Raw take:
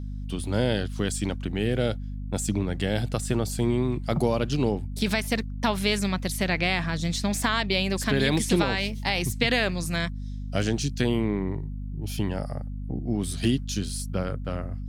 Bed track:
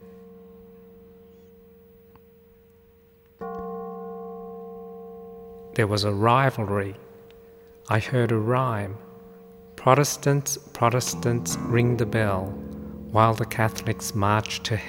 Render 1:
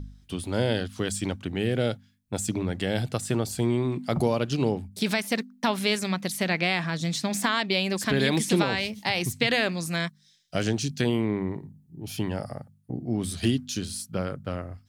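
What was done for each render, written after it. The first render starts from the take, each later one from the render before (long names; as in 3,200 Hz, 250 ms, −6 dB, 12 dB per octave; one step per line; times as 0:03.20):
hum removal 50 Hz, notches 5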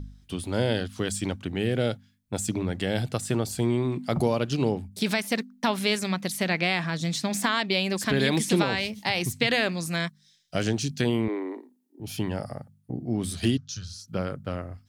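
0:11.28–0:12.00: Butterworth high-pass 250 Hz 72 dB per octave
0:13.57–0:14.08: drawn EQ curve 140 Hz 0 dB, 240 Hz −22 dB, 340 Hz −25 dB, 580 Hz −12 dB, 930 Hz −16 dB, 1,300 Hz 0 dB, 2,100 Hz −13 dB, 6,000 Hz 0 dB, 8,700 Hz −18 dB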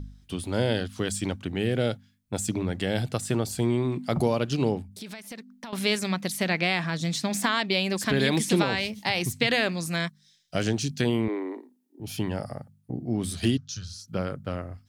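0:04.82–0:05.73: downward compressor 3 to 1, threshold −41 dBFS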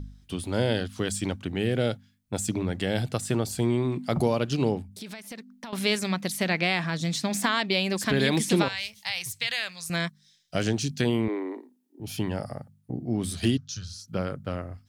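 0:08.68–0:09.90: guitar amp tone stack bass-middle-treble 10-0-10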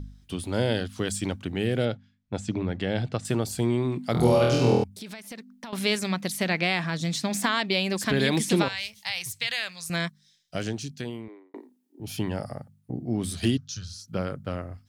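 0:01.85–0:03.25: high-frequency loss of the air 130 metres
0:04.12–0:04.84: flutter between parallel walls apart 4.2 metres, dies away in 0.94 s
0:10.06–0:11.54: fade out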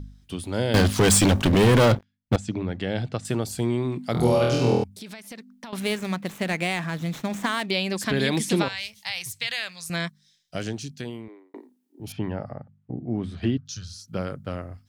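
0:00.74–0:02.36: leveller curve on the samples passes 5
0:05.80–0:07.71: running median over 9 samples
0:12.12–0:13.66: low-pass filter 2,100 Hz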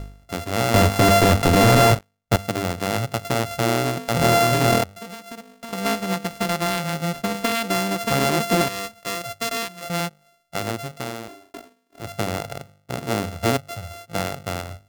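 samples sorted by size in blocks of 64 samples
in parallel at −6 dB: wave folding −16 dBFS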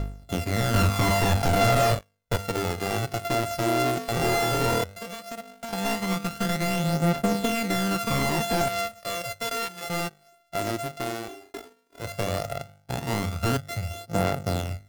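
soft clipping −20.5 dBFS, distortion −9 dB
phase shifter 0.14 Hz, delay 3.1 ms, feedback 47%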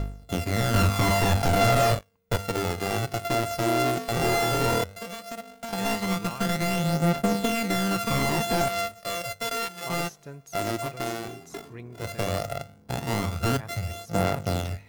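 mix in bed track −21 dB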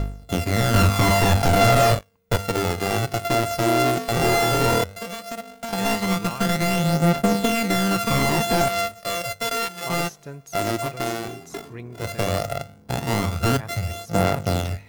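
level +4.5 dB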